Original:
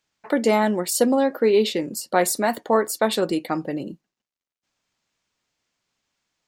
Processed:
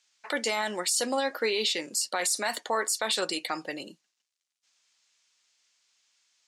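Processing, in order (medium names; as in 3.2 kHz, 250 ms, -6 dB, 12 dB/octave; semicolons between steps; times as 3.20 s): frequency weighting ITU-R 468; peak limiter -15.5 dBFS, peak gain reduction 14 dB; trim -2 dB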